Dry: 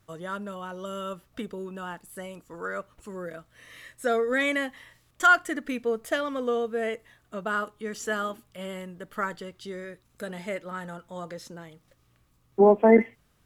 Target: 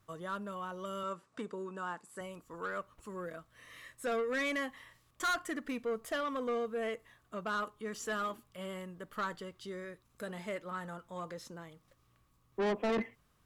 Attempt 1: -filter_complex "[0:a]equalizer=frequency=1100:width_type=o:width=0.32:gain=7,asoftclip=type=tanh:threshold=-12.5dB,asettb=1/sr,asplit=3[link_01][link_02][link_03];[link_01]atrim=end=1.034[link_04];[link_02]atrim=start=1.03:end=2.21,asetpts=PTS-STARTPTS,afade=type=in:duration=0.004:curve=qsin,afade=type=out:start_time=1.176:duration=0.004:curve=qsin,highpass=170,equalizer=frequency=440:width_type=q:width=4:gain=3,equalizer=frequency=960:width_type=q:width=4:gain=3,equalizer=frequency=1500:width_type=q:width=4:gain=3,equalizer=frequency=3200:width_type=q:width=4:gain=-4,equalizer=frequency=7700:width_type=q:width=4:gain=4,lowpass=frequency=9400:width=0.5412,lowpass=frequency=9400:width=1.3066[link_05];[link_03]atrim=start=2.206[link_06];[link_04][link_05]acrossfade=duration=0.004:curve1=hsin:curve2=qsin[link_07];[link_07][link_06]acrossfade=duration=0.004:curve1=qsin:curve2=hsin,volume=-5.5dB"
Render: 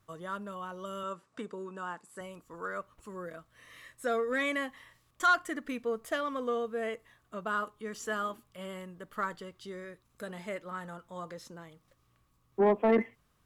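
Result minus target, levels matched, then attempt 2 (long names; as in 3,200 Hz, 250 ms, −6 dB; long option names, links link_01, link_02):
soft clipping: distortion −10 dB
-filter_complex "[0:a]equalizer=frequency=1100:width_type=o:width=0.32:gain=7,asoftclip=type=tanh:threshold=-23.5dB,asettb=1/sr,asplit=3[link_01][link_02][link_03];[link_01]atrim=end=1.034[link_04];[link_02]atrim=start=1.03:end=2.21,asetpts=PTS-STARTPTS,afade=type=in:duration=0.004:curve=qsin,afade=type=out:start_time=1.176:duration=0.004:curve=qsin,highpass=170,equalizer=frequency=440:width_type=q:width=4:gain=3,equalizer=frequency=960:width_type=q:width=4:gain=3,equalizer=frequency=1500:width_type=q:width=4:gain=3,equalizer=frequency=3200:width_type=q:width=4:gain=-4,equalizer=frequency=7700:width_type=q:width=4:gain=4,lowpass=frequency=9400:width=0.5412,lowpass=frequency=9400:width=1.3066[link_05];[link_03]atrim=start=2.206[link_06];[link_04][link_05]acrossfade=duration=0.004:curve1=hsin:curve2=qsin[link_07];[link_07][link_06]acrossfade=duration=0.004:curve1=qsin:curve2=hsin,volume=-5.5dB"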